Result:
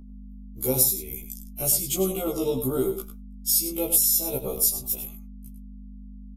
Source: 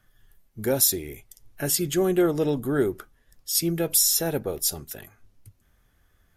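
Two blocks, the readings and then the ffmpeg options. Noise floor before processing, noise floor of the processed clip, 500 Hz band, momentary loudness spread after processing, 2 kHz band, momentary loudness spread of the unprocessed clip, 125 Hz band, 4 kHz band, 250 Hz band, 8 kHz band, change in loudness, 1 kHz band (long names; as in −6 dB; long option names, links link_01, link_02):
−66 dBFS, −42 dBFS, −2.5 dB, 16 LU, −10.5 dB, 19 LU, −3.0 dB, −3.5 dB, −4.0 dB, +1.0 dB, 0.0 dB, −3.5 dB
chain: -filter_complex "[0:a]aemphasis=mode=production:type=50fm,agate=range=-33dB:threshold=-44dB:ratio=16:detection=peak,acompressor=threshold=-19dB:ratio=4,aeval=exprs='val(0)+0.0112*(sin(2*PI*50*n/s)+sin(2*PI*2*50*n/s)/2+sin(2*PI*3*50*n/s)/3+sin(2*PI*4*50*n/s)/4+sin(2*PI*5*50*n/s)/5)':channel_layout=same,asuperstop=centerf=1700:order=4:qfactor=1.8,asplit=2[link_01][link_02];[link_02]adelay=99.13,volume=-9dB,highshelf=frequency=4000:gain=-2.23[link_03];[link_01][link_03]amix=inputs=2:normalize=0,afftfilt=real='re*1.73*eq(mod(b,3),0)':imag='im*1.73*eq(mod(b,3),0)':win_size=2048:overlap=0.75,volume=1.5dB"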